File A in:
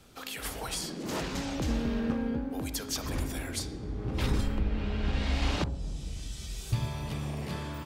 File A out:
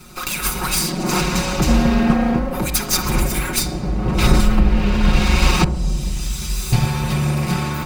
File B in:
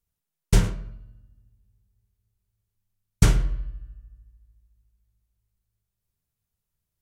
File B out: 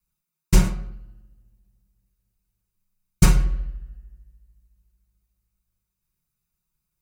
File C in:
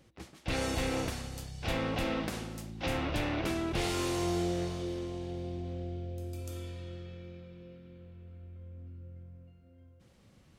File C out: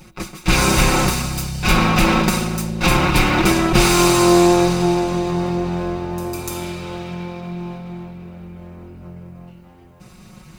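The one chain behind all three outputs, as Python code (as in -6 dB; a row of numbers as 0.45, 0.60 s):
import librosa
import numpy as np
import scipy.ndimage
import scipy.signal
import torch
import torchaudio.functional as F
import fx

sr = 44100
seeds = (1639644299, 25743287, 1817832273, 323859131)

y = fx.lower_of_two(x, sr, delay_ms=0.82)
y = fx.high_shelf(y, sr, hz=11000.0, db=4.0)
y = fx.notch(y, sr, hz=3400.0, q=11.0)
y = y + 0.83 * np.pad(y, (int(5.5 * sr / 1000.0), 0))[:len(y)]
y = librosa.util.normalize(y) * 10.0 ** (-1.5 / 20.0)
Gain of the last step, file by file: +14.0, +1.0, +18.0 dB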